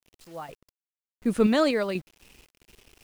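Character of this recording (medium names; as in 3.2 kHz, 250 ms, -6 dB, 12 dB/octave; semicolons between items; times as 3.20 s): random-step tremolo 4.1 Hz, depth 90%; a quantiser's noise floor 10-bit, dither none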